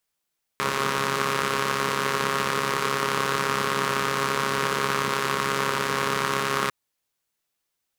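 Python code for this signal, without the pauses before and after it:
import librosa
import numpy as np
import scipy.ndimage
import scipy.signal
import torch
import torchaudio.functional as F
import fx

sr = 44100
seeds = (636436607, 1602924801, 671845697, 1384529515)

y = fx.engine_four(sr, seeds[0], length_s=6.1, rpm=4100, resonances_hz=(210.0, 420.0, 1100.0))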